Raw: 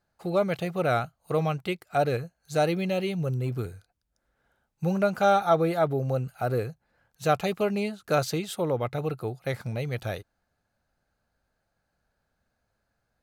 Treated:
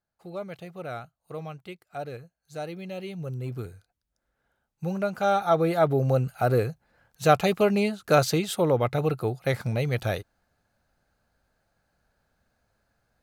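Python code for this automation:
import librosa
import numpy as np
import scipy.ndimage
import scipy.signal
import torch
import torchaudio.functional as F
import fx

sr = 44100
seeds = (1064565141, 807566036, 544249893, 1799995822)

y = fx.gain(x, sr, db=fx.line((2.69, -11.0), (3.51, -3.5), (5.16, -3.5), (6.03, 4.5)))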